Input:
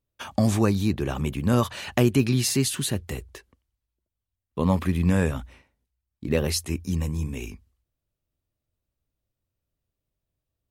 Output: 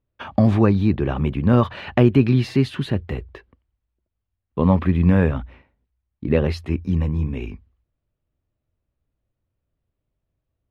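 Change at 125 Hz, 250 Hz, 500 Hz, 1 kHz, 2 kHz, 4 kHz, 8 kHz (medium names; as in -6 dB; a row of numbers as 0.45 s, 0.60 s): +6.0 dB, +5.5 dB, +5.0 dB, +4.5 dB, +2.0 dB, -5.0 dB, under -20 dB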